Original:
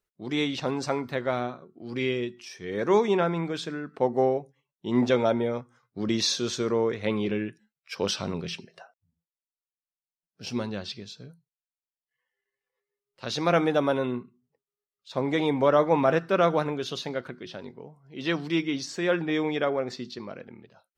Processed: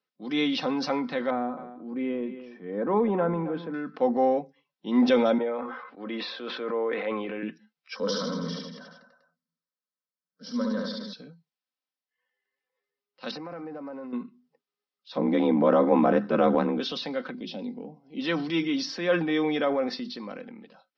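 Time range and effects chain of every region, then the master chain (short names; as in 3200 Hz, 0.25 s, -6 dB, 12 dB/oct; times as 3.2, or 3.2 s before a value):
1.3–3.74 LPF 1100 Hz + echo 0.269 s -16 dB
5.38–7.43 BPF 450–2500 Hz + air absorption 230 m + sustainer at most 48 dB/s
7.96–11.13 fixed phaser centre 520 Hz, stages 8 + reverse bouncing-ball echo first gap 70 ms, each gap 1.1×, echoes 5
13.31–14.13 block floating point 5-bit + running mean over 13 samples + compressor 16:1, threshold -35 dBFS
15.17–16.8 tilt -3 dB/oct + ring modulator 38 Hz
17.34–18.2 resonant high-pass 210 Hz, resonance Q 2.5 + band shelf 1400 Hz -14.5 dB 1 oct
whole clip: Chebyshev band-pass 150–5400 Hz, order 5; comb 3.9 ms, depth 55%; transient shaper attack -2 dB, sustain +5 dB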